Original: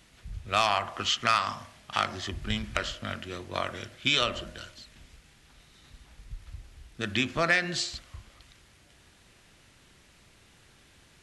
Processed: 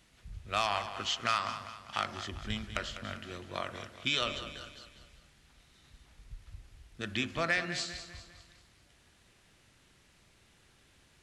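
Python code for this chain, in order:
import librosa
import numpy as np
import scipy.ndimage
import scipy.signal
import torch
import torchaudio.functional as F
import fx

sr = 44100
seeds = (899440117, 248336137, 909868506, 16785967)

y = fx.echo_feedback(x, sr, ms=199, feedback_pct=45, wet_db=-11.5)
y = F.gain(torch.from_numpy(y), -6.0).numpy()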